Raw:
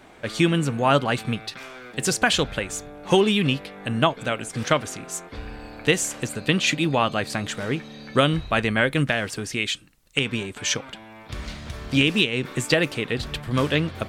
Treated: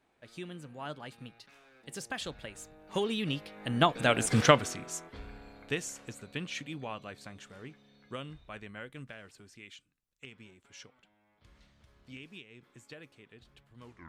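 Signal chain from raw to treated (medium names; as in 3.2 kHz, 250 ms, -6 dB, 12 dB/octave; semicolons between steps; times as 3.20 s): tape stop on the ending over 0.50 s; Doppler pass-by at 4.28 s, 18 m/s, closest 3.4 m; trim +3.5 dB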